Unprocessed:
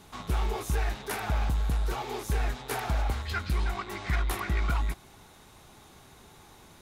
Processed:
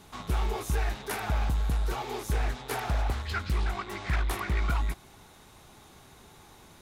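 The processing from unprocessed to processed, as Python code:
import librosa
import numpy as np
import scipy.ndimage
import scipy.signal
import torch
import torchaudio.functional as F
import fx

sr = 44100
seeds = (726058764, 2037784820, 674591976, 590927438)

y = fx.doppler_dist(x, sr, depth_ms=0.33, at=(2.32, 4.55))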